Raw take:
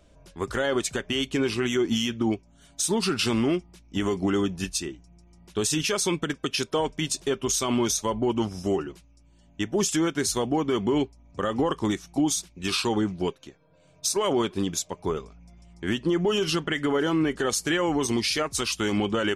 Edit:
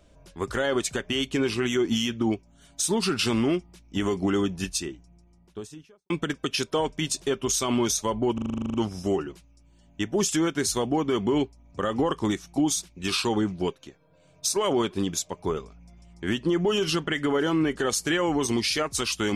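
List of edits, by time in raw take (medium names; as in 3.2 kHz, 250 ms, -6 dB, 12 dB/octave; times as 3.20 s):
4.79–6.10 s: studio fade out
8.34 s: stutter 0.04 s, 11 plays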